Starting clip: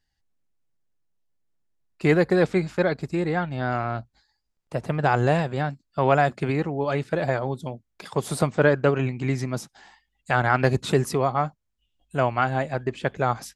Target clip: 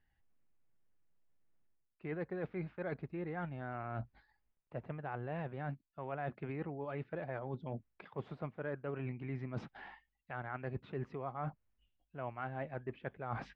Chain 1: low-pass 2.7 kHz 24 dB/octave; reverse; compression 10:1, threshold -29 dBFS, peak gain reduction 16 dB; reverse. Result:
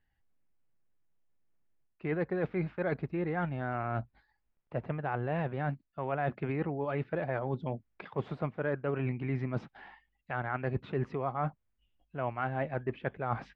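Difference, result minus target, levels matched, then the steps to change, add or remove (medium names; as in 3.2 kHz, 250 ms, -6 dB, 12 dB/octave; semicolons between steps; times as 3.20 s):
compression: peak gain reduction -8 dB
change: compression 10:1, threshold -38 dBFS, peak gain reduction 24 dB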